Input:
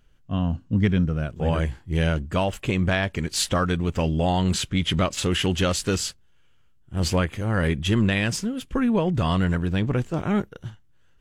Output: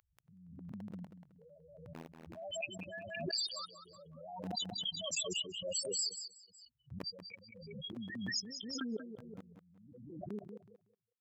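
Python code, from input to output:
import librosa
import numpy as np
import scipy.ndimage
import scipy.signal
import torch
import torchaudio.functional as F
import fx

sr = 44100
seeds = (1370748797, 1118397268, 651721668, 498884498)

p1 = fx.block_float(x, sr, bits=7)
p2 = 10.0 ** (-16.0 / 20.0) * np.tanh(p1 / 10.0 ** (-16.0 / 20.0))
p3 = fx.spec_topn(p2, sr, count=4)
p4 = fx.notch(p3, sr, hz=4100.0, q=6.6)
p5 = fx.level_steps(p4, sr, step_db=24)
p6 = p5 + fx.echo_feedback(p5, sr, ms=186, feedback_pct=19, wet_db=-9.5, dry=0)
p7 = fx.dynamic_eq(p6, sr, hz=1500.0, q=0.94, threshold_db=-50.0, ratio=4.0, max_db=-3)
p8 = scipy.signal.sosfilt(scipy.signal.butter(2, 1100.0, 'highpass', fs=sr, output='sos'), p7)
p9 = fx.high_shelf(p8, sr, hz=9500.0, db=8.0)
p10 = fx.pre_swell(p9, sr, db_per_s=39.0)
y = p10 * librosa.db_to_amplitude(11.0)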